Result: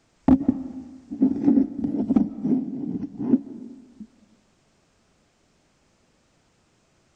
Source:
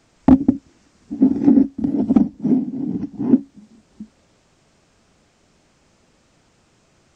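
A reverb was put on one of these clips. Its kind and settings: algorithmic reverb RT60 1.4 s, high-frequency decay 0.75×, pre-delay 105 ms, DRR 15 dB; trim -5.5 dB

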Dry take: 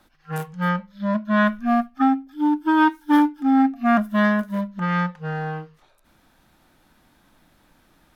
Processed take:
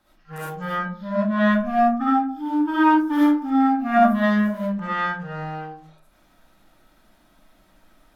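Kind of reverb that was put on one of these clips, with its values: algorithmic reverb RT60 0.47 s, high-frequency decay 0.4×, pre-delay 25 ms, DRR -8.5 dB; trim -8.5 dB

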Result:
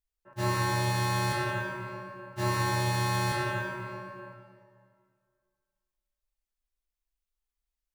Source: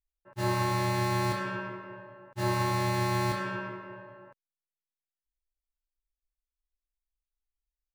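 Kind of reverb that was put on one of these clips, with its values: plate-style reverb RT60 2.1 s, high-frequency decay 0.8×, DRR 2 dB

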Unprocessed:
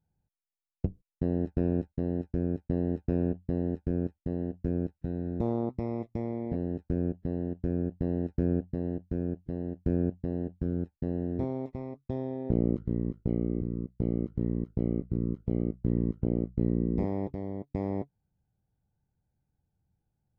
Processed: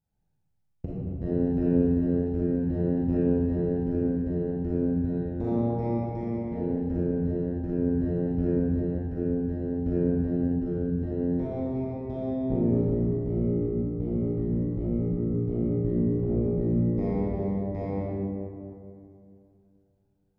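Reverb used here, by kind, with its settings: algorithmic reverb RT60 2.6 s, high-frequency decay 0.5×, pre-delay 0 ms, DRR -9 dB; trim -5.5 dB

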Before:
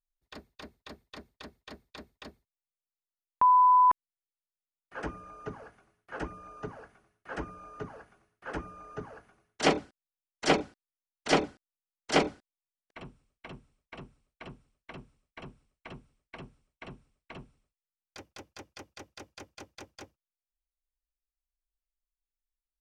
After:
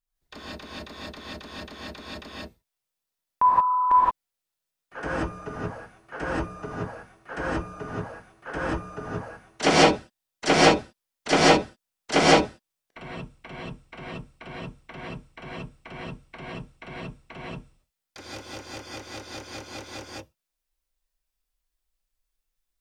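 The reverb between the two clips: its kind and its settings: gated-style reverb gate 200 ms rising, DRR -7.5 dB; trim +2 dB

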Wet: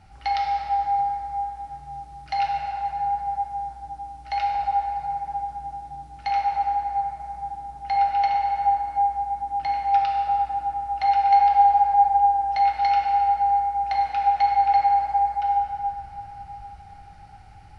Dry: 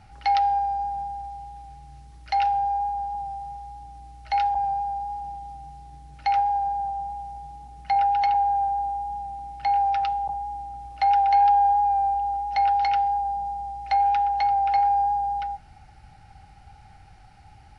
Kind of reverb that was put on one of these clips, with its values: plate-style reverb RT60 3.9 s, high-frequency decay 0.45×, pre-delay 0 ms, DRR -2.5 dB; trim -2.5 dB

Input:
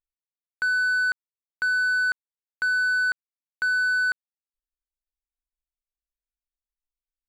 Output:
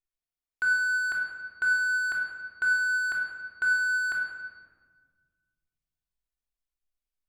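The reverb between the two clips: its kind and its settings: simulated room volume 1700 m³, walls mixed, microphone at 3.3 m; trim -5.5 dB

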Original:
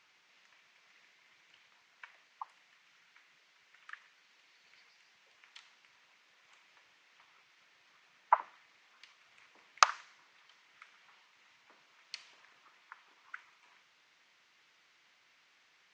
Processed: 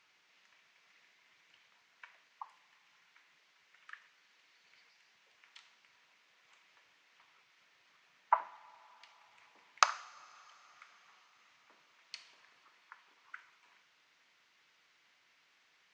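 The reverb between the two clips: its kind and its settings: two-slope reverb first 0.48 s, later 4.6 s, from -18 dB, DRR 12.5 dB; trim -2.5 dB

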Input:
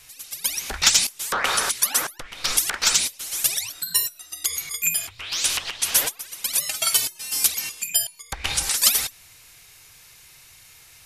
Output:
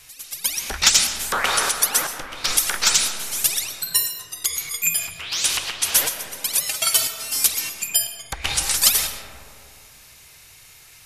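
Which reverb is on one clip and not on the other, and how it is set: algorithmic reverb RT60 2.6 s, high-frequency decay 0.25×, pre-delay 85 ms, DRR 7 dB; trim +1.5 dB

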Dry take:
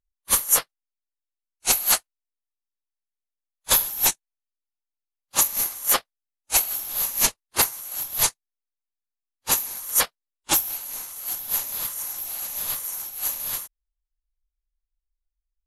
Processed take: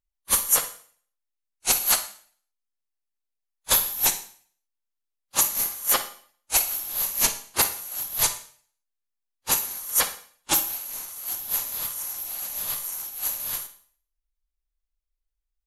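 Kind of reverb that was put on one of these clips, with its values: Schroeder reverb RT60 0.5 s, DRR 10 dB; trim -1.5 dB

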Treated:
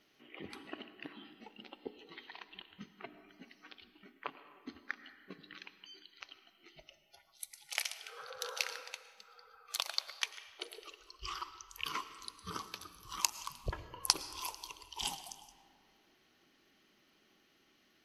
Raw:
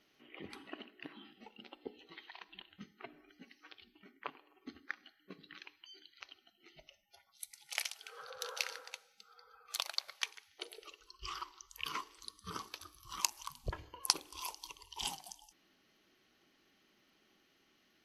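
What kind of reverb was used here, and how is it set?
algorithmic reverb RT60 2.1 s, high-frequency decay 0.55×, pre-delay 70 ms, DRR 13 dB; trim +1.5 dB

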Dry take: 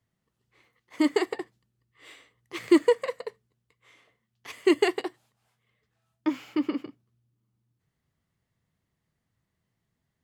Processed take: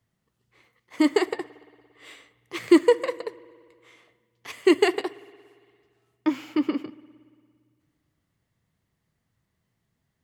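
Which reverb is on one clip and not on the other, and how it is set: spring tank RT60 2 s, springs 57 ms, chirp 55 ms, DRR 19 dB; trim +3 dB

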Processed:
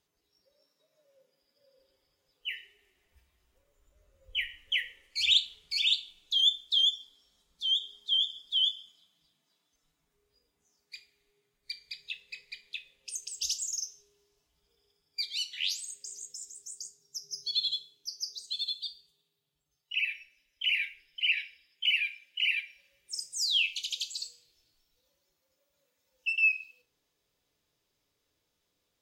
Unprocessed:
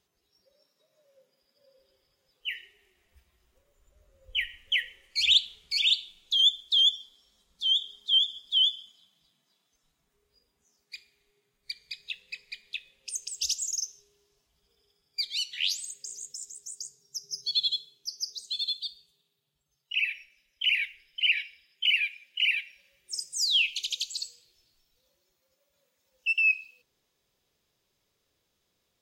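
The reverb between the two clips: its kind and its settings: FDN reverb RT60 0.34 s, low-frequency decay 0.85×, high-frequency decay 0.8×, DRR 6.5 dB; trim -3.5 dB

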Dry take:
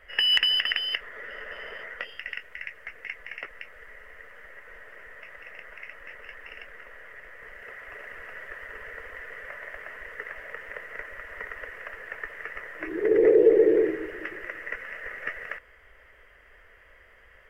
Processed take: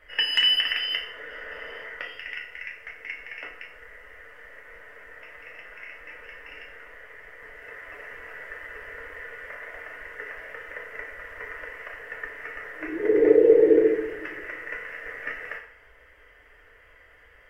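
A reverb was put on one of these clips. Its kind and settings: FDN reverb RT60 0.65 s, low-frequency decay 0.8×, high-frequency decay 0.85×, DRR -1 dB; trim -2.5 dB

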